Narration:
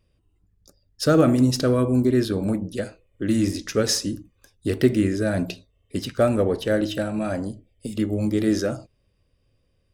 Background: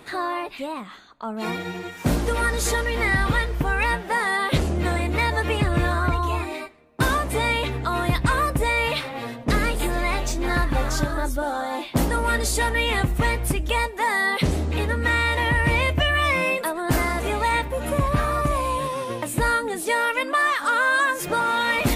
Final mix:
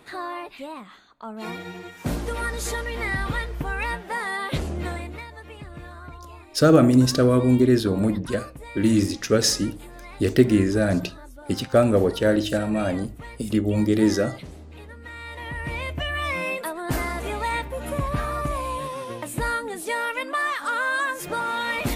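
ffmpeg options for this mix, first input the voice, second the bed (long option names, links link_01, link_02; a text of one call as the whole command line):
ffmpeg -i stem1.wav -i stem2.wav -filter_complex "[0:a]adelay=5550,volume=2dB[link_01];[1:a]volume=8.5dB,afade=type=out:start_time=4.82:duration=0.44:silence=0.223872,afade=type=in:start_time=15.13:duration=1.45:silence=0.199526[link_02];[link_01][link_02]amix=inputs=2:normalize=0" out.wav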